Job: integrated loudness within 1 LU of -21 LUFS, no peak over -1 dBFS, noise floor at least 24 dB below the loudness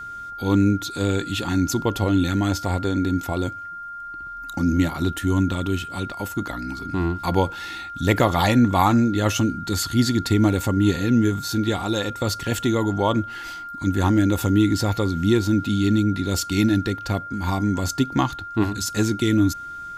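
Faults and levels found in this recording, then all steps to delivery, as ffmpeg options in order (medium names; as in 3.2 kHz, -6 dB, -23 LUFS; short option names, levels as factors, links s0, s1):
steady tone 1.4 kHz; tone level -32 dBFS; loudness -22.0 LUFS; peak level -4.5 dBFS; loudness target -21.0 LUFS
-> -af "bandreject=f=1400:w=30"
-af "volume=1.12"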